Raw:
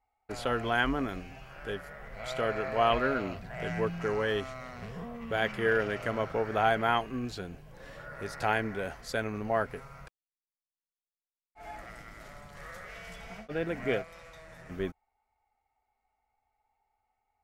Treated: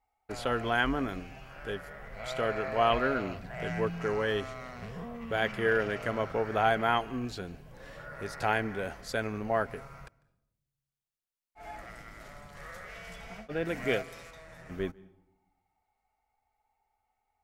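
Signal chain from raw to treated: 13.65–14.31 high shelf 3300 Hz +9.5 dB; on a send: reverb RT60 0.85 s, pre-delay 0.148 s, DRR 23.5 dB

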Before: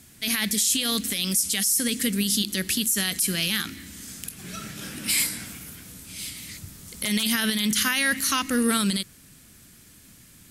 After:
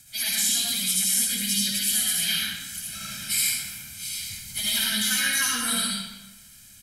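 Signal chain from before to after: passive tone stack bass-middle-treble 5-5-5; comb 1.3 ms, depth 67%; dynamic EQ 2700 Hz, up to -3 dB, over -50 dBFS, Q 4.8; in parallel at 0 dB: vocal rider within 5 dB 0.5 s; on the sum: plain phase-vocoder stretch 0.65×; reverb RT60 1.1 s, pre-delay 35 ms, DRR -4.5 dB

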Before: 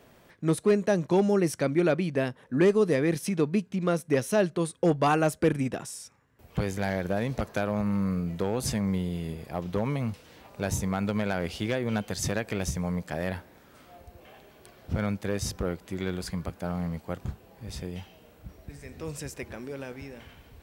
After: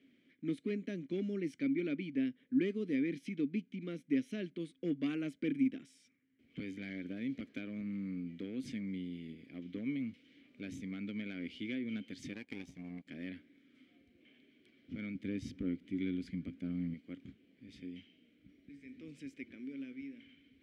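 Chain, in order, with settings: vowel filter i; 12.33–13.07 power-law curve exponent 1.4; 15.15–16.94 low shelf 250 Hz +10.5 dB; gain +1 dB

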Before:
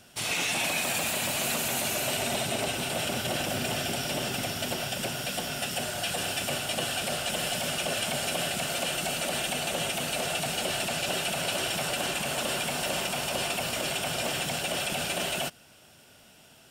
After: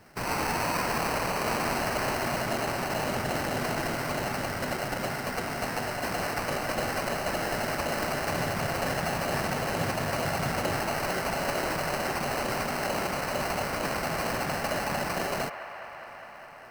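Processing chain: 8.29–10.79 bell 97 Hz +13.5 dB 1 oct; sample-rate reducer 3500 Hz, jitter 0%; band-limited delay 0.204 s, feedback 82%, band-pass 1300 Hz, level -10 dB

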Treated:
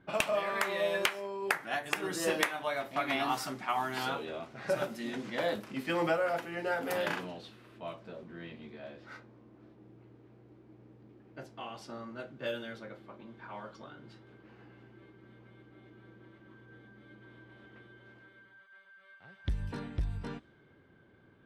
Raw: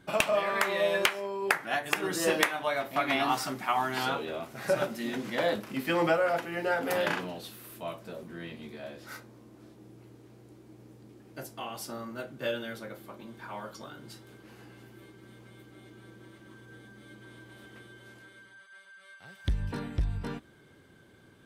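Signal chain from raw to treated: low-pass opened by the level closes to 2200 Hz, open at -27 dBFS; gain -4 dB

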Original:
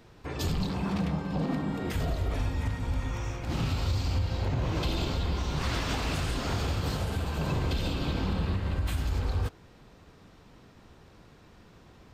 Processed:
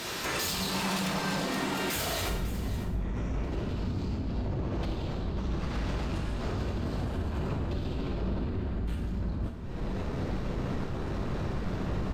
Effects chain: tilt +3.5 dB/oct, from 2.29 s -2.5 dB/oct; compressor 8:1, threshold -43 dBFS, peak gain reduction 26.5 dB; limiter -40 dBFS, peak gain reduction 9.5 dB; sine folder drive 16 dB, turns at -30 dBFS; echo 0.55 s -14.5 dB; non-linear reverb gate 0.23 s falling, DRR 1 dB

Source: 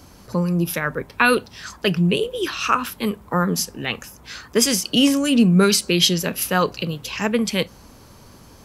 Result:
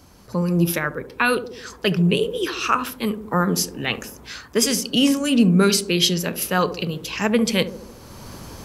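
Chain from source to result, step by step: on a send: narrowing echo 71 ms, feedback 66%, band-pass 330 Hz, level -10 dB; on the sum: AGC gain up to 13 dB; gain -4 dB

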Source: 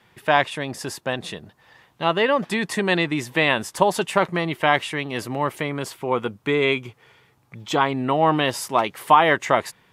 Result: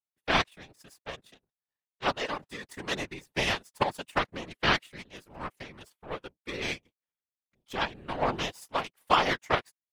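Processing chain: high shelf 4400 Hz +5 dB; power-law curve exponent 2; comb 6.1 ms, depth 38%; whisperiser; gain -2.5 dB

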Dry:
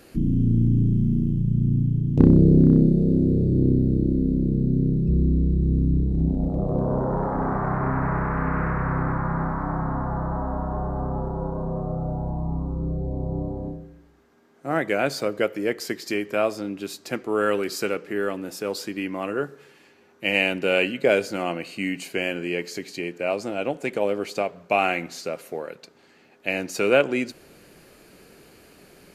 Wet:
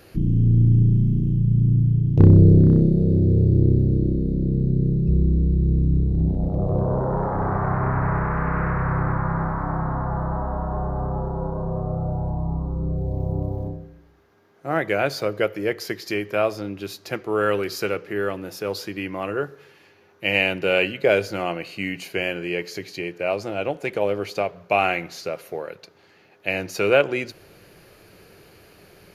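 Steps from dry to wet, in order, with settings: 12.97–13.68 sample gate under -54.5 dBFS; thirty-one-band EQ 100 Hz +10 dB, 250 Hz -10 dB, 8000 Hz -12 dB; gain +1.5 dB

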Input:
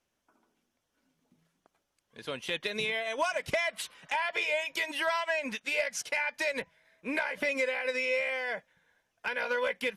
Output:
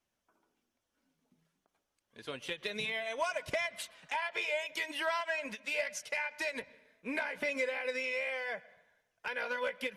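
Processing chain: vibrato 3.9 Hz 19 cents; flange 0.34 Hz, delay 0.9 ms, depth 4.2 ms, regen -65%; on a send at -20 dB: reverb RT60 0.90 s, pre-delay 0.102 s; on the sum: ending taper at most 360 dB/s

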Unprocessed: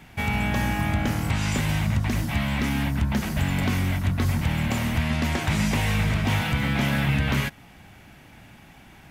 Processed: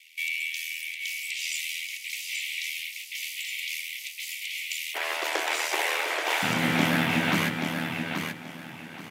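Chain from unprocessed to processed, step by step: steep high-pass 2100 Hz 96 dB/oct, from 4.94 s 360 Hz, from 6.42 s 160 Hz; ring modulator 40 Hz; feedback echo 0.831 s, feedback 26%, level -6 dB; gain +4.5 dB

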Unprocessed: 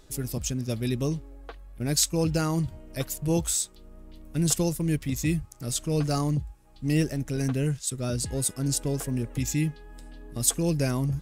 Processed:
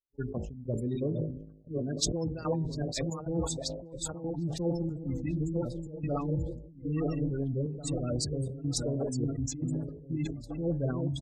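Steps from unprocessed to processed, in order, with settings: regenerating reverse delay 0.471 s, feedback 51%, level -4 dB; gate -30 dBFS, range -49 dB; spectral noise reduction 6 dB; spectral gate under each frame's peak -20 dB strong; de-hum 52.69 Hz, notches 18; reverse; compressor 10:1, threshold -32 dBFS, peak gain reduction 15 dB; reverse; step gate "xxx.xxxx.xx" 92 bpm -12 dB; outdoor echo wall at 290 m, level -17 dB; LFO low-pass sine 5.5 Hz 470–6200 Hz; sustainer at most 73 dB/s; gain +3 dB

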